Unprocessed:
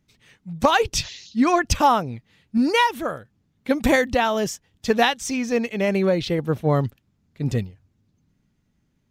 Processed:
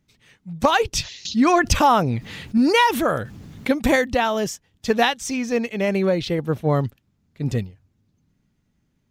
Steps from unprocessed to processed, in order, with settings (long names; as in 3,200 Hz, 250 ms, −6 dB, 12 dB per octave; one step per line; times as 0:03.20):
0:01.25–0:03.71: envelope flattener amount 50%